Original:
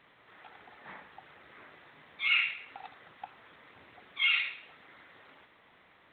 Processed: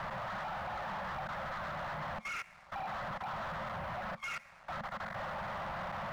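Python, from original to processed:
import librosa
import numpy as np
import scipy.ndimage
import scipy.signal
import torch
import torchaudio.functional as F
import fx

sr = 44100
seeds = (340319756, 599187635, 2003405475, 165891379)

y = x + 0.5 * 10.0 ** (-31.5 / 20.0) * np.sign(x)
y = scipy.signal.sosfilt(scipy.signal.butter(4, 1400.0, 'lowpass', fs=sr, output='sos'), y)
y = fx.level_steps(y, sr, step_db=21)
y = scipy.signal.sosfilt(scipy.signal.cheby1(5, 1.0, [220.0, 530.0], 'bandstop', fs=sr, output='sos'), y)
y = fx.leveller(y, sr, passes=3)
y = y * librosa.db_to_amplitude(-3.5)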